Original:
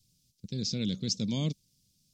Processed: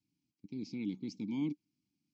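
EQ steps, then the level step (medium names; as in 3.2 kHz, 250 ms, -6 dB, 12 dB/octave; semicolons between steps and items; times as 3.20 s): vowel filter u; band-stop 3.6 kHz, Q 8.2; +6.5 dB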